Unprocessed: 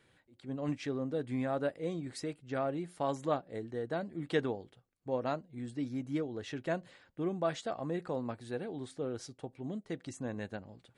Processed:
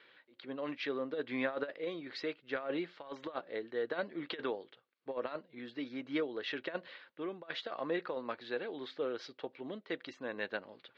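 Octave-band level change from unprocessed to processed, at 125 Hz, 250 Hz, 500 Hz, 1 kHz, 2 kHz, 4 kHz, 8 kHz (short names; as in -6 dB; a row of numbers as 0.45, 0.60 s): -15.5 dB, -4.5 dB, -2.0 dB, -4.5 dB, +4.5 dB, +4.5 dB, under -15 dB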